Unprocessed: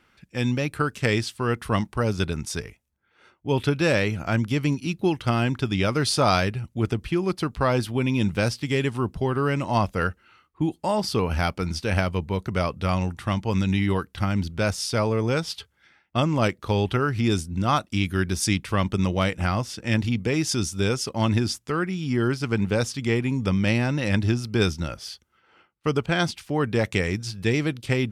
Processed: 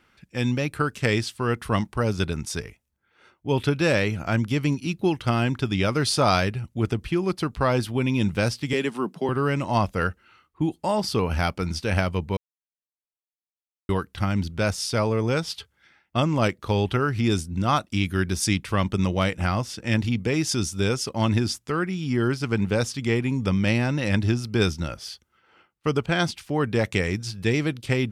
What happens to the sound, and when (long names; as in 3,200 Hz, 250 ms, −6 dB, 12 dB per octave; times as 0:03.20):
0:08.73–0:09.29: Butterworth high-pass 160 Hz 48 dB per octave
0:12.37–0:13.89: silence